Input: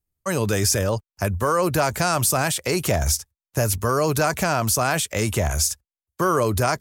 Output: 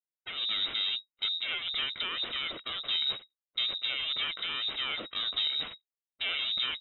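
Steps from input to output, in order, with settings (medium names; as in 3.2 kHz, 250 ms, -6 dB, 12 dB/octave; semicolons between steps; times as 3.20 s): comb filter that takes the minimum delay 1.2 ms; frequency inversion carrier 3.8 kHz; level-controlled noise filter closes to 580 Hz, open at -22 dBFS; trim -9 dB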